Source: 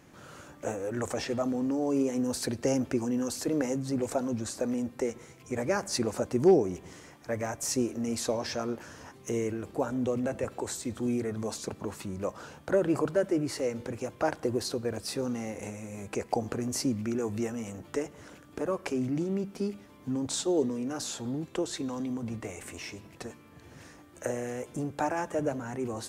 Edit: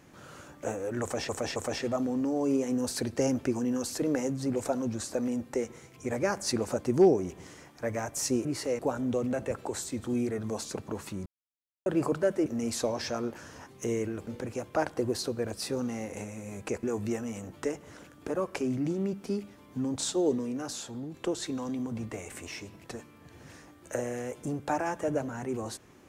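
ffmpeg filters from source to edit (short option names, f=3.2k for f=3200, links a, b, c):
-filter_complex "[0:a]asplit=11[a][b][c][d][e][f][g][h][i][j][k];[a]atrim=end=1.292[l];[b]atrim=start=1.018:end=1.292[m];[c]atrim=start=1.018:end=7.912[n];[d]atrim=start=13.388:end=13.732[o];[e]atrim=start=9.718:end=12.19,asetpts=PTS-STARTPTS,afade=t=out:st=2.468:d=0.004:c=hsin[p];[f]atrim=start=12.19:end=12.79,asetpts=PTS-STARTPTS,volume=0[q];[g]atrim=start=12.79:end=13.392,asetpts=PTS-STARTPTS,afade=t=in:d=0.004:c=hsin[r];[h]atrim=start=7.908:end=9.722[s];[i]atrim=start=13.728:end=16.292[t];[j]atrim=start=17.138:end=21.45,asetpts=PTS-STARTPTS,afade=t=out:st=3.602:d=0.71:silence=0.473151[u];[k]atrim=start=21.45,asetpts=PTS-STARTPTS,afade=t=in:d=0.004:c=hsin:silence=0.473151[v];[l][m]acrossfade=d=0.004:c1=hsin:c2=hsin[w];[w][n]acrossfade=d=0.004:c1=hsin:c2=hsin[x];[x][o]acrossfade=d=0.004:c1=hsin:c2=hsin[y];[p][q][r]concat=n=3:v=0:a=1[z];[y][z]acrossfade=d=0.004:c1=hsin:c2=hsin[aa];[aa][s]acrossfade=d=0.004:c1=hsin:c2=hsin[ab];[ab][t]acrossfade=d=0.004:c1=hsin:c2=hsin[ac];[u][v]concat=n=2:v=0:a=1[ad];[ac][ad]acrossfade=d=0.004:c1=hsin:c2=hsin"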